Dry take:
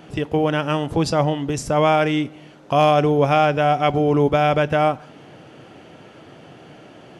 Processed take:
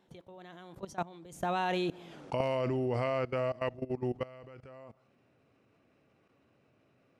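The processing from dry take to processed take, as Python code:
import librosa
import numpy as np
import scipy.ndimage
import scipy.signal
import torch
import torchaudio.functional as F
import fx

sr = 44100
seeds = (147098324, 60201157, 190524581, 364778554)

y = fx.doppler_pass(x, sr, speed_mps=55, closest_m=7.2, pass_at_s=2.19)
y = fx.level_steps(y, sr, step_db=19)
y = F.gain(torch.from_numpy(y), 7.0).numpy()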